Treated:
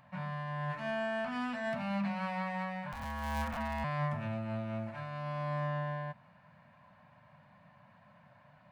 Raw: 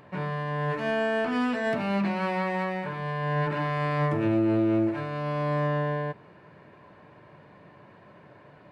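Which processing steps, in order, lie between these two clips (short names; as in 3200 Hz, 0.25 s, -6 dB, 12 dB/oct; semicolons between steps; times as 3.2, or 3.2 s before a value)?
2.92–3.84 cycle switcher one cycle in 2, inverted; Chebyshev band-stop 220–650 Hz, order 2; gain -7 dB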